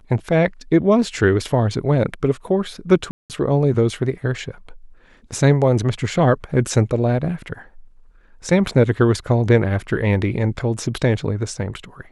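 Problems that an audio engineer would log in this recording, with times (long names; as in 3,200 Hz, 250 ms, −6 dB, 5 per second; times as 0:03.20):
0:03.11–0:03.30: drop-out 188 ms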